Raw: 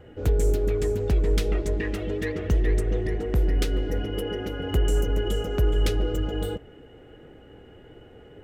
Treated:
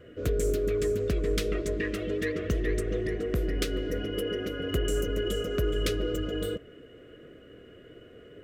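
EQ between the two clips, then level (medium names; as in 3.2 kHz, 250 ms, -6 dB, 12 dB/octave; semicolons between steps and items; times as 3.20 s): Butterworth band-stop 850 Hz, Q 2.3; bass shelf 110 Hz -10.5 dB; 0.0 dB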